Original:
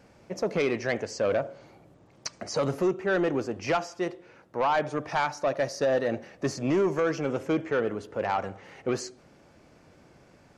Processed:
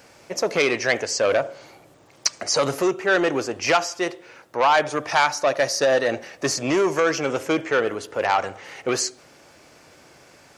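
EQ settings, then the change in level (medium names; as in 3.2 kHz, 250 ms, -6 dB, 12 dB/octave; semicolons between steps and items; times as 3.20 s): tilt EQ +2.5 dB/octave; peaking EQ 200 Hz -5.5 dB 0.47 oct; +8.0 dB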